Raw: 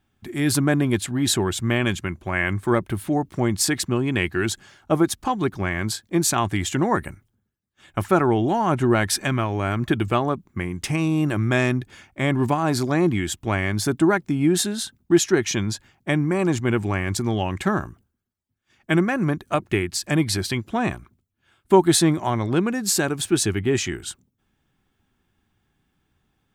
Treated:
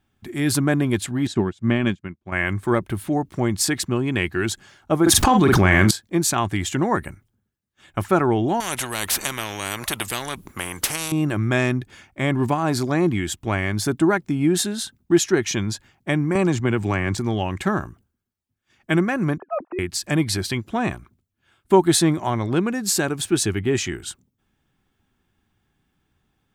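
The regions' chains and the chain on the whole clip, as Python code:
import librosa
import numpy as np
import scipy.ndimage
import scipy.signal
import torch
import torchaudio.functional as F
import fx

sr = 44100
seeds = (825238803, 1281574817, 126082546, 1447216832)

y = fx.chain(x, sr, fx.lowpass(hz=6300.0, slope=12),
    fx.peak_eq(hz=210.0, db=7.5, octaves=1.4),
    fx.upward_expand(threshold_db=-37.0, expansion=2.5), at=(1.27, 2.32))
y = fx.chain(y, sr, fx.doubler(ms=43.0, db=-10),
    fx.env_flatten(amount_pct=100), at=(5.02, 5.91))
y = fx.chain(y, sr, fx.peak_eq(hz=11000.0, db=12.0, octaves=0.45),
    fx.spectral_comp(ratio=4.0), at=(8.6, 11.12))
y = fx.chain(y, sr, fx.peak_eq(hz=11000.0, db=-13.0, octaves=0.23),
    fx.band_squash(depth_pct=100), at=(16.35, 17.18))
y = fx.chain(y, sr, fx.sine_speech(),
    fx.lowpass(hz=1200.0, slope=12),
    fx.over_compress(threshold_db=-25.0, ratio=-1.0), at=(19.38, 19.79))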